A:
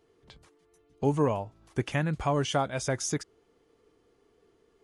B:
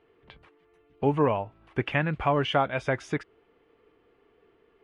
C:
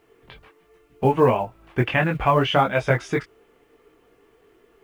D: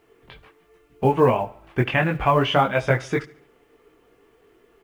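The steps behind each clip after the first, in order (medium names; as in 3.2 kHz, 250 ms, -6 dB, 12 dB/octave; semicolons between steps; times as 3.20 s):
FFT filter 160 Hz 0 dB, 2.7 kHz +7 dB, 6.4 kHz -19 dB
chorus voices 6, 0.72 Hz, delay 20 ms, depth 4.9 ms; companded quantiser 8-bit; trim +9 dB
feedback delay 71 ms, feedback 48%, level -20.5 dB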